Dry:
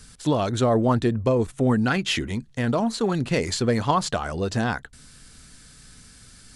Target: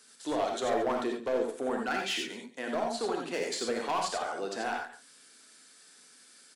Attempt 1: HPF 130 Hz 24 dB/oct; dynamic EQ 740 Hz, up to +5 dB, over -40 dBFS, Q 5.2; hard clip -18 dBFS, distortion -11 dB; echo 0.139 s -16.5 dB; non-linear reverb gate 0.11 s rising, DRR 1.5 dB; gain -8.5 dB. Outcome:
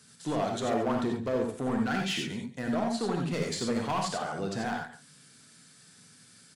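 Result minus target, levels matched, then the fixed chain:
125 Hz band +15.5 dB
HPF 300 Hz 24 dB/oct; dynamic EQ 740 Hz, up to +5 dB, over -40 dBFS, Q 5.2; hard clip -18 dBFS, distortion -12 dB; echo 0.139 s -16.5 dB; non-linear reverb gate 0.11 s rising, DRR 1.5 dB; gain -8.5 dB

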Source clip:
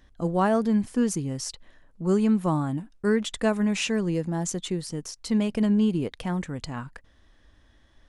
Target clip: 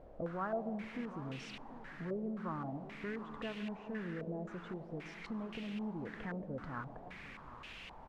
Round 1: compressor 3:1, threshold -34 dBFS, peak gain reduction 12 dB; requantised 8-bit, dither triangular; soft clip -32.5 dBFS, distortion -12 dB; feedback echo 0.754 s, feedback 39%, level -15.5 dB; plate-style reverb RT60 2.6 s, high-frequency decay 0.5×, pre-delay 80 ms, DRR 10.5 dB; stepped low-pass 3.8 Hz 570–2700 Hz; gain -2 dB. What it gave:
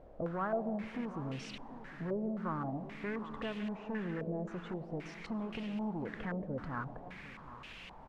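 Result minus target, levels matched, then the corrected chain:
compressor: peak gain reduction -5.5 dB
compressor 3:1, threshold -42 dBFS, peak gain reduction 17.5 dB; requantised 8-bit, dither triangular; soft clip -32.5 dBFS, distortion -18 dB; feedback echo 0.754 s, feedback 39%, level -15.5 dB; plate-style reverb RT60 2.6 s, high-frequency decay 0.5×, pre-delay 80 ms, DRR 10.5 dB; stepped low-pass 3.8 Hz 570–2700 Hz; gain -2 dB

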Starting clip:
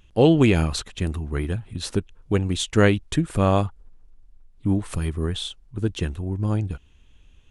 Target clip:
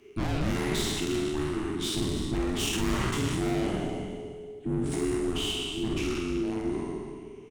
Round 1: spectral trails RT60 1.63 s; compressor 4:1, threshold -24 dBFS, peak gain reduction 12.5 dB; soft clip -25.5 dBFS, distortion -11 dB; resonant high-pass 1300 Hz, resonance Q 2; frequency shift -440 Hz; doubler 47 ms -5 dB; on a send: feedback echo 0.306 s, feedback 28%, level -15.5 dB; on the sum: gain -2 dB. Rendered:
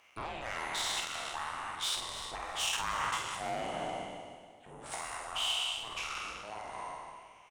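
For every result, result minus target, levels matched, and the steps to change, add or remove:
compressor: peak gain reduction +12.5 dB; 1000 Hz band +8.0 dB
remove: compressor 4:1, threshold -24 dBFS, peak gain reduction 12.5 dB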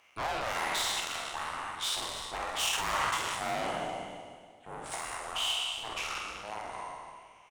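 1000 Hz band +8.5 dB
remove: resonant high-pass 1300 Hz, resonance Q 2

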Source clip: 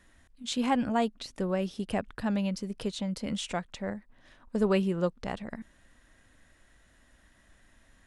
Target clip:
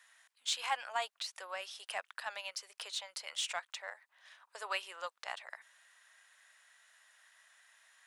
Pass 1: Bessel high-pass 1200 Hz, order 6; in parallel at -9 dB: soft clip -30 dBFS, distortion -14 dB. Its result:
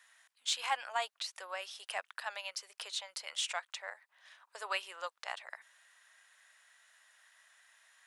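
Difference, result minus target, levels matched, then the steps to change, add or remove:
soft clip: distortion -9 dB
change: soft clip -41.5 dBFS, distortion -5 dB

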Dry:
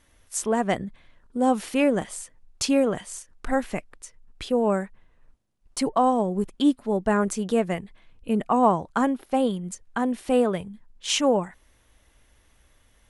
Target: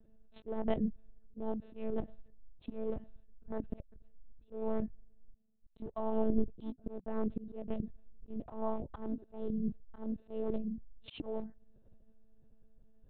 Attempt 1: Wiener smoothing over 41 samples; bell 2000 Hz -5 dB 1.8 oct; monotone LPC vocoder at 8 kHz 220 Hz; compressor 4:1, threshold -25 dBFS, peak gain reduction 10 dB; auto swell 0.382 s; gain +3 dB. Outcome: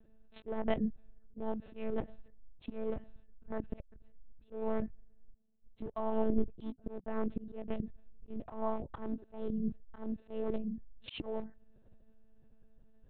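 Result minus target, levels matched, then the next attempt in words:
2000 Hz band +6.0 dB
Wiener smoothing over 41 samples; bell 2000 Hz -12.5 dB 1.8 oct; monotone LPC vocoder at 8 kHz 220 Hz; compressor 4:1, threshold -25 dBFS, peak gain reduction 8.5 dB; auto swell 0.382 s; gain +3 dB

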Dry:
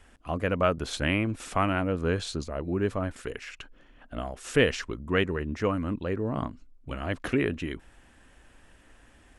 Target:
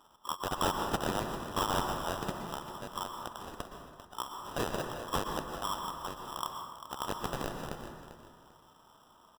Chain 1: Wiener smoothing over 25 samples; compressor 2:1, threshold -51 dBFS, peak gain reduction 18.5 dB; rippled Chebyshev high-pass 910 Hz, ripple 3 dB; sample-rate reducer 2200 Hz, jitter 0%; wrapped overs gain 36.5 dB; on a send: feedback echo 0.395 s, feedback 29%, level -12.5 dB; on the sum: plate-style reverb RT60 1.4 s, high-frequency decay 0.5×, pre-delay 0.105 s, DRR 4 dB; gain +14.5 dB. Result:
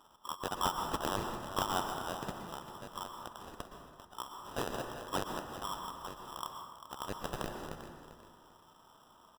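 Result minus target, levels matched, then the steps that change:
compressor: peak gain reduction +4.5 dB
change: compressor 2:1, threshold -42 dBFS, peak gain reduction 14 dB

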